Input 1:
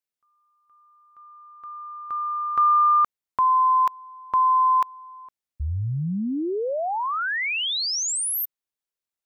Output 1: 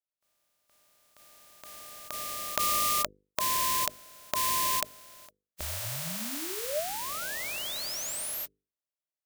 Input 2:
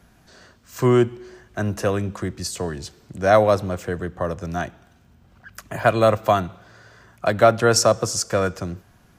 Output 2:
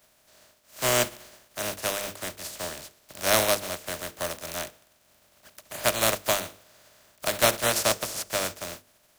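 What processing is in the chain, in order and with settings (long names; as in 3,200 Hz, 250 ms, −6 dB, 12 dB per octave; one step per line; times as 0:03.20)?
compressing power law on the bin magnitudes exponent 0.23
parametric band 610 Hz +12.5 dB 0.21 octaves
mains-hum notches 50/100/150/200/250/300/350/400/450/500 Hz
level −8.5 dB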